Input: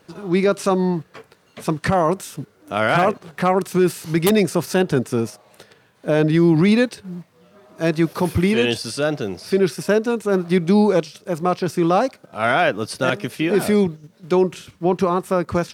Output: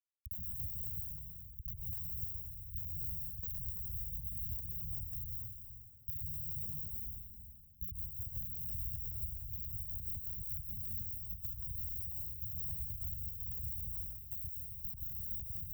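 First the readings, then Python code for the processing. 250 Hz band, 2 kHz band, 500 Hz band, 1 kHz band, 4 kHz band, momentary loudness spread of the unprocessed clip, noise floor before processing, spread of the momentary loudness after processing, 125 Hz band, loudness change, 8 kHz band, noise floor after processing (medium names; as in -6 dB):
under -40 dB, under -40 dB, under -40 dB, under -40 dB, under -40 dB, 9 LU, -56 dBFS, 5 LU, -21.0 dB, -19.5 dB, under -30 dB, -55 dBFS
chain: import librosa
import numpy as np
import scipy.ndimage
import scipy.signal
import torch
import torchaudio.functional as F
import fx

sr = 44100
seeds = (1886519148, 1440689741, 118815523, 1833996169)

y = fx.delta_hold(x, sr, step_db=-25.0)
y = fx.hum_notches(y, sr, base_hz=60, count=5)
y = fx.level_steps(y, sr, step_db=11)
y = fx.curve_eq(y, sr, hz=(160.0, 460.0, 680.0, 970.0, 1500.0, 3000.0, 5800.0, 12000.0), db=(0, 14, 8, -29, -13, -14, 5, 13))
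y = fx.schmitt(y, sr, flips_db=-17.0)
y = scipy.signal.sosfilt(scipy.signal.cheby2(4, 80, [470.0, 5300.0], 'bandstop', fs=sr, output='sos'), y)
y = fx.high_shelf(y, sr, hz=9700.0, db=5.5)
y = fx.rev_plate(y, sr, seeds[0], rt60_s=1.4, hf_ratio=0.85, predelay_ms=115, drr_db=-0.5)
y = fx.tremolo_shape(y, sr, shape='triangle', hz=2.3, depth_pct=30)
y = scipy.signal.sosfilt(scipy.signal.butter(2, 110.0, 'highpass', fs=sr, output='sos'), y)
y = fx.band_squash(y, sr, depth_pct=70)
y = y * librosa.db_to_amplitude(-7.5)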